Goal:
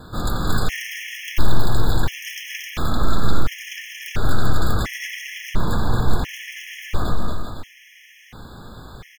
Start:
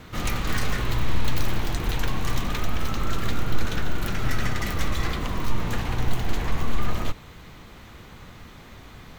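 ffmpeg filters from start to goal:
ffmpeg -i in.wav -af "aecho=1:1:230|391|503.7|582.6|637.8:0.631|0.398|0.251|0.158|0.1,afftfilt=real='re*gt(sin(2*PI*0.72*pts/sr)*(1-2*mod(floor(b*sr/1024/1700),2)),0)':imag='im*gt(sin(2*PI*0.72*pts/sr)*(1-2*mod(floor(b*sr/1024/1700),2)),0)':win_size=1024:overlap=0.75,volume=4dB" out.wav

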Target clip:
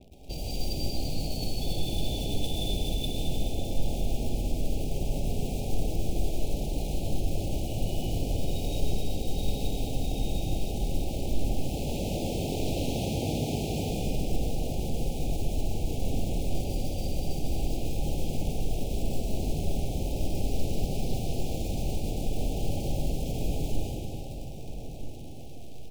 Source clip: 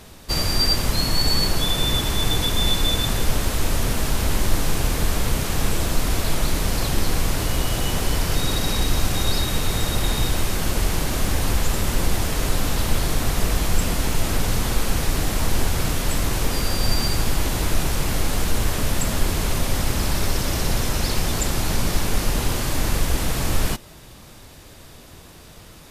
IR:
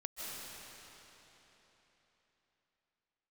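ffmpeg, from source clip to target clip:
-filter_complex "[0:a]asettb=1/sr,asplit=3[link_01][link_02][link_03];[link_01]atrim=end=11.554[link_04];[link_02]atrim=start=11.55:end=13.89,asetpts=PTS-STARTPTS,afade=type=in:duration=0.004:curve=qsin,afade=type=out:start_time=2.336:duration=0.004:curve=qsin,highpass=100[link_05];[link_03]atrim=start=13.886[link_06];[link_04][link_05]acrossfade=duration=0.004:curve1=hsin:curve2=qsin[link_07];[link_07][link_06]acrossfade=duration=0.004:curve1=qsin:curve2=hsin,acompressor=threshold=-17dB:ratio=6,alimiter=limit=-15.5dB:level=0:latency=1:release=390,adynamicsmooth=sensitivity=2.5:basefreq=1200,acrusher=bits=8:dc=4:mix=0:aa=0.000001,asuperstop=centerf=1400:order=12:qfactor=0.84,asplit=2[link_08][link_09];[link_09]adelay=1283,volume=-10dB,highshelf=frequency=4000:gain=-28.9[link_10];[link_08][link_10]amix=inputs=2:normalize=0[link_11];[1:a]atrim=start_sample=2205,asetrate=57330,aresample=44100[link_12];[link_11][link_12]afir=irnorm=-1:irlink=0,adynamicequalizer=threshold=0.00112:dfrequency=4800:dqfactor=0.7:tfrequency=4800:tqfactor=0.7:attack=5:release=100:ratio=0.375:range=3.5:mode=boostabove:tftype=highshelf"

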